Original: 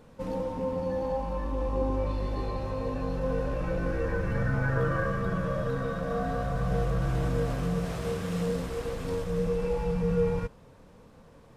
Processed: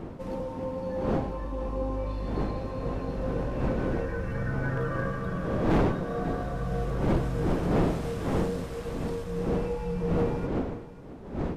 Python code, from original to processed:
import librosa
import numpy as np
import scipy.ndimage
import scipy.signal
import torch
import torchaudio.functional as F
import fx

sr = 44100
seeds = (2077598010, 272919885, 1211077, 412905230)

y = fx.dmg_wind(x, sr, seeds[0], corner_hz=370.0, level_db=-27.0)
y = y + 10.0 ** (-16.0 / 20.0) * np.pad(y, (int(539 * sr / 1000.0), 0))[:len(y)]
y = np.clip(y, -10.0 ** (-16.5 / 20.0), 10.0 ** (-16.5 / 20.0))
y = F.gain(torch.from_numpy(y), -3.0).numpy()